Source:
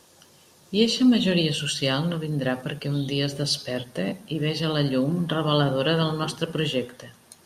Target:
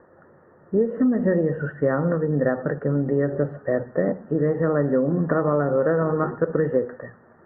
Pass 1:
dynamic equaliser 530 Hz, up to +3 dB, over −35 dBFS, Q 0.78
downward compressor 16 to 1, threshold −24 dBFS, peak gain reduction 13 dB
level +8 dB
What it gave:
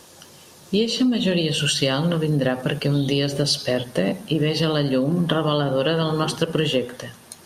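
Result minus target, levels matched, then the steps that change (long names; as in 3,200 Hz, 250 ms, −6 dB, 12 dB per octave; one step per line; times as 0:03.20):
2,000 Hz band +2.5 dB
add after dynamic equaliser: Chebyshev low-pass with heavy ripple 1,900 Hz, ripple 6 dB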